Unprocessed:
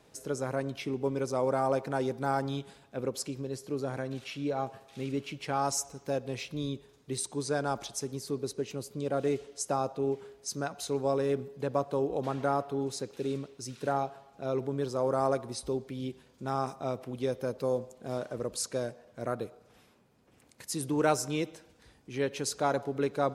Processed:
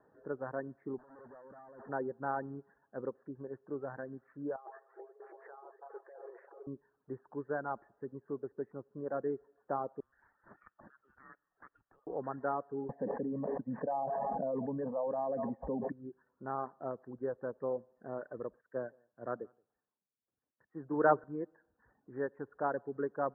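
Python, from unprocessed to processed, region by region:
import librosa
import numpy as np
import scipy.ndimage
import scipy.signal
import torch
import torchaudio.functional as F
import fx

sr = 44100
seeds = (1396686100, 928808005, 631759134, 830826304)

y = fx.chain(x, sr, fx.peak_eq(hz=240.0, db=7.0, octaves=0.23),
    fx.over_compress(threshold_db=-34.0, ratio=-0.5),
    fx.tube_stage(drive_db=43.0, bias=0.65), at=(0.98, 1.89))
y = fx.chain(y, sr, fx.over_compress(threshold_db=-41.0, ratio=-1.0),
    fx.brickwall_highpass(low_hz=340.0),
    fx.echo_opening(ms=328, hz=750, octaves=1, feedback_pct=70, wet_db=-6), at=(4.56, 6.67))
y = fx.chain(y, sr, fx.highpass(hz=690.0, slope=6),
    fx.freq_invert(carrier_hz=3800),
    fx.band_squash(depth_pct=100), at=(10.0, 12.07))
y = fx.chain(y, sr, fx.fixed_phaser(hz=370.0, stages=6),
    fx.env_flatten(amount_pct=100), at=(12.89, 15.92))
y = fx.chain(y, sr, fx.echo_single(ms=174, db=-15.5),
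    fx.band_widen(depth_pct=70), at=(18.61, 21.24))
y = scipy.signal.sosfilt(scipy.signal.cheby1(8, 1.0, 1800.0, 'lowpass', fs=sr, output='sos'), y)
y = fx.dereverb_blind(y, sr, rt60_s=0.75)
y = fx.low_shelf(y, sr, hz=150.0, db=-12.0)
y = y * 10.0 ** (-3.5 / 20.0)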